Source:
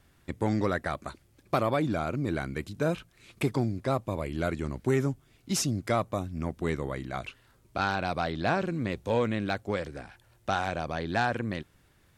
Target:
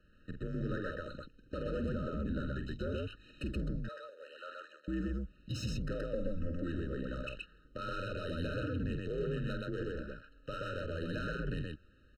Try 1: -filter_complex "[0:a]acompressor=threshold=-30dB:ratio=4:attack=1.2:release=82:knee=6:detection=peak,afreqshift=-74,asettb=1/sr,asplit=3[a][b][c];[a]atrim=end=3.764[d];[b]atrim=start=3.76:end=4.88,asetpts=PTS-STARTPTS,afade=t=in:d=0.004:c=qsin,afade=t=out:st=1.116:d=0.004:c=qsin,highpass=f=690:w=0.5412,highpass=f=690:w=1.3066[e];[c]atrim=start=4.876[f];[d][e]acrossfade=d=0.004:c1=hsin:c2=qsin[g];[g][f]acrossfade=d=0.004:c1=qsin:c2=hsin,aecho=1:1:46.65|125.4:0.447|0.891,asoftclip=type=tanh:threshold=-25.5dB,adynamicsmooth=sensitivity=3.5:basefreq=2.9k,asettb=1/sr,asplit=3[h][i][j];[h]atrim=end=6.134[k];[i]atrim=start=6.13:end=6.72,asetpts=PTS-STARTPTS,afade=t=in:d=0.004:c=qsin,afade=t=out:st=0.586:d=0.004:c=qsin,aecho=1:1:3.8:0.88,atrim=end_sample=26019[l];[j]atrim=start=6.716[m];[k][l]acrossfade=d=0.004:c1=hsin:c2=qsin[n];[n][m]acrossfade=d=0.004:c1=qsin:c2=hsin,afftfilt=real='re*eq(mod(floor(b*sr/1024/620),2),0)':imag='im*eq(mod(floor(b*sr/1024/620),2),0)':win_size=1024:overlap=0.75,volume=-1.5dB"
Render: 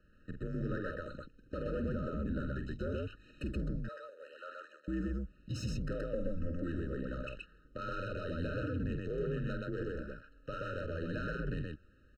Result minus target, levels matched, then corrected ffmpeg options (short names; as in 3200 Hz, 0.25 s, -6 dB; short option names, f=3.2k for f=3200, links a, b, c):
4000 Hz band -4.5 dB
-filter_complex "[0:a]acompressor=threshold=-30dB:ratio=4:attack=1.2:release=82:knee=6:detection=peak,equalizer=f=3.5k:t=o:w=0.43:g=10,afreqshift=-74,asettb=1/sr,asplit=3[a][b][c];[a]atrim=end=3.764[d];[b]atrim=start=3.76:end=4.88,asetpts=PTS-STARTPTS,afade=t=in:d=0.004:c=qsin,afade=t=out:st=1.116:d=0.004:c=qsin,highpass=f=690:w=0.5412,highpass=f=690:w=1.3066[e];[c]atrim=start=4.876[f];[d][e]acrossfade=d=0.004:c1=hsin:c2=qsin[g];[g][f]acrossfade=d=0.004:c1=qsin:c2=hsin,aecho=1:1:46.65|125.4:0.447|0.891,asoftclip=type=tanh:threshold=-25.5dB,adynamicsmooth=sensitivity=3.5:basefreq=2.9k,asettb=1/sr,asplit=3[h][i][j];[h]atrim=end=6.134[k];[i]atrim=start=6.13:end=6.72,asetpts=PTS-STARTPTS,afade=t=in:d=0.004:c=qsin,afade=t=out:st=0.586:d=0.004:c=qsin,aecho=1:1:3.8:0.88,atrim=end_sample=26019[l];[j]atrim=start=6.716[m];[k][l]acrossfade=d=0.004:c1=hsin:c2=qsin[n];[n][m]acrossfade=d=0.004:c1=qsin:c2=hsin,afftfilt=real='re*eq(mod(floor(b*sr/1024/620),2),0)':imag='im*eq(mod(floor(b*sr/1024/620),2),0)':win_size=1024:overlap=0.75,volume=-1.5dB"